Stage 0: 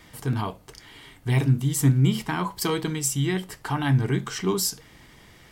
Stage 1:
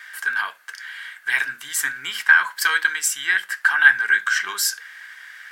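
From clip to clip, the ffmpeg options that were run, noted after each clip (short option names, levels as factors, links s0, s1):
-af "highpass=f=1600:t=q:w=12,volume=1.58"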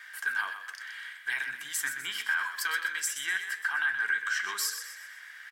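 -filter_complex "[0:a]alimiter=limit=0.224:level=0:latency=1:release=167,asplit=2[s0][s1];[s1]asplit=5[s2][s3][s4][s5][s6];[s2]adelay=125,afreqshift=37,volume=0.355[s7];[s3]adelay=250,afreqshift=74,volume=0.157[s8];[s4]adelay=375,afreqshift=111,volume=0.0684[s9];[s5]adelay=500,afreqshift=148,volume=0.0302[s10];[s6]adelay=625,afreqshift=185,volume=0.0133[s11];[s7][s8][s9][s10][s11]amix=inputs=5:normalize=0[s12];[s0][s12]amix=inputs=2:normalize=0,volume=0.447"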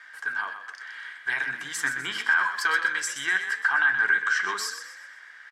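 -af "lowpass=4500,equalizer=f=2800:w=0.65:g=-10.5,dynaudnorm=f=210:g=11:m=2.11,volume=2.24"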